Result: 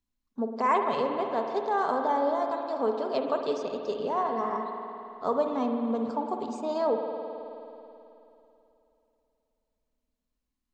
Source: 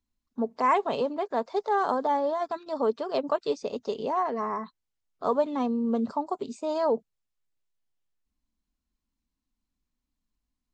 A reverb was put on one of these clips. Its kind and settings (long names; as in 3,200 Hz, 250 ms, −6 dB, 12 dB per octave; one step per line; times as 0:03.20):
spring reverb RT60 3 s, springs 53 ms, chirp 25 ms, DRR 3.5 dB
level −2 dB